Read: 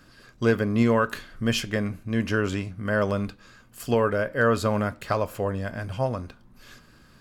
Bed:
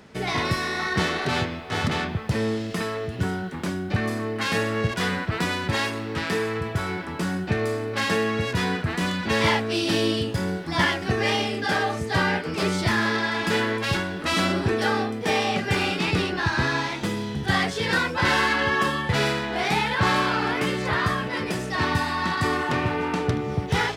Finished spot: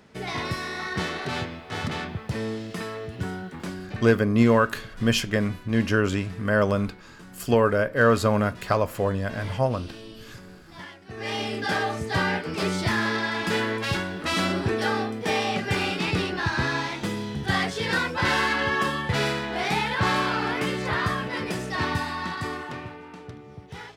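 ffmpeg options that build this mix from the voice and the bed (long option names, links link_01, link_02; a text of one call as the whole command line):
ffmpeg -i stem1.wav -i stem2.wav -filter_complex "[0:a]adelay=3600,volume=2.5dB[link_01];[1:a]volume=13dB,afade=type=out:start_time=3.64:duration=0.6:silence=0.177828,afade=type=in:start_time=11.08:duration=0.46:silence=0.125893,afade=type=out:start_time=21.73:duration=1.28:silence=0.177828[link_02];[link_01][link_02]amix=inputs=2:normalize=0" out.wav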